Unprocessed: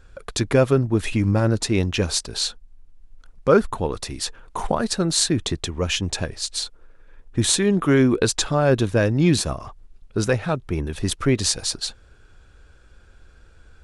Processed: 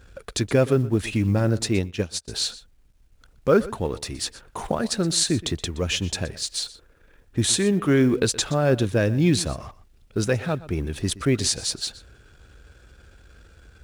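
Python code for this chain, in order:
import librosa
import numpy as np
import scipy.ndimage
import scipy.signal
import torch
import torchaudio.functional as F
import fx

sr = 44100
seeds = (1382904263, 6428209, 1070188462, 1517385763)

y = fx.law_mismatch(x, sr, coded='mu')
y = scipy.signal.sosfilt(scipy.signal.butter(2, 42.0, 'highpass', fs=sr, output='sos'), y)
y = fx.peak_eq(y, sr, hz=1000.0, db=-4.5, octaves=0.8)
y = y + 10.0 ** (-18.0 / 20.0) * np.pad(y, (int(122 * sr / 1000.0), 0))[:len(y)]
y = fx.upward_expand(y, sr, threshold_db=-34.0, expansion=2.5, at=(1.79, 2.28))
y = F.gain(torch.from_numpy(y), -2.0).numpy()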